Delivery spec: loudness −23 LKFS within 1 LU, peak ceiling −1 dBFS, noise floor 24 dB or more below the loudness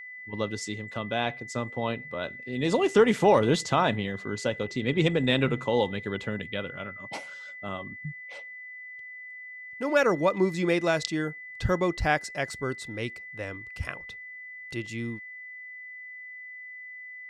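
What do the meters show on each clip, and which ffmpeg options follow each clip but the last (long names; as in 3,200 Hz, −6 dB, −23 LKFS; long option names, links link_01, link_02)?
interfering tone 2,000 Hz; level of the tone −40 dBFS; integrated loudness −28.0 LKFS; sample peak −7.5 dBFS; target loudness −23.0 LKFS
→ -af "bandreject=frequency=2000:width=30"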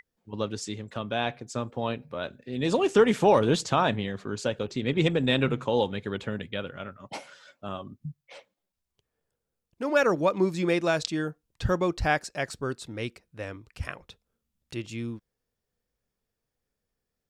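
interfering tone none found; integrated loudness −27.5 LKFS; sample peak −7.5 dBFS; target loudness −23.0 LKFS
→ -af "volume=4.5dB"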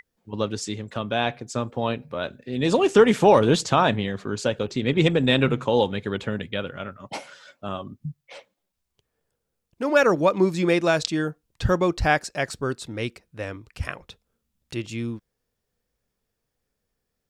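integrated loudness −23.0 LKFS; sample peak −3.0 dBFS; background noise floor −80 dBFS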